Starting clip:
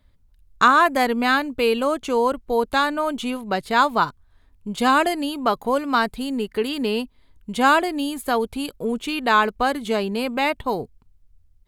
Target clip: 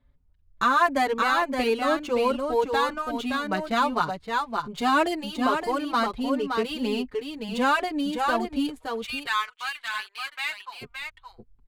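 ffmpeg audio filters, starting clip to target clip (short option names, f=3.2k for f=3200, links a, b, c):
-filter_complex "[0:a]asplit=3[a][b][c];[a]afade=t=out:st=8.78:d=0.02[d];[b]highpass=f=1.3k:w=0.5412,highpass=f=1.3k:w=1.3066,afade=t=in:st=8.78:d=0.02,afade=t=out:st=10.81:d=0.02[e];[c]afade=t=in:st=10.81:d=0.02[f];[d][e][f]amix=inputs=3:normalize=0,adynamicsmooth=sensitivity=8:basefreq=2.8k,aecho=1:1:569:0.531,alimiter=level_in=7.5dB:limit=-1dB:release=50:level=0:latency=1,asplit=2[g][h];[h]adelay=5.3,afreqshift=1.3[i];[g][i]amix=inputs=2:normalize=1,volume=-8.5dB"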